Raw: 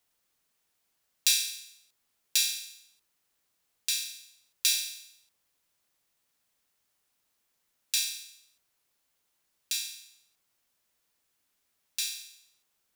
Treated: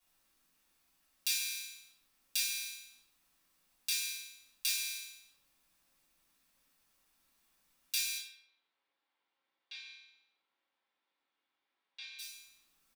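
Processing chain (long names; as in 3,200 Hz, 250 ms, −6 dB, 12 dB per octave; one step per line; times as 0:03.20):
downward compressor 6 to 1, threshold −31 dBFS, peak gain reduction 11.5 dB
0:08.17–0:12.19: loudspeaker in its box 500–3,100 Hz, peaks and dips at 640 Hz −7 dB, 1,200 Hz −7 dB, 1,700 Hz −6 dB, 2,600 Hz −9 dB
far-end echo of a speakerphone 120 ms, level −12 dB
convolution reverb RT60 0.45 s, pre-delay 3 ms, DRR −9 dB
level −7.5 dB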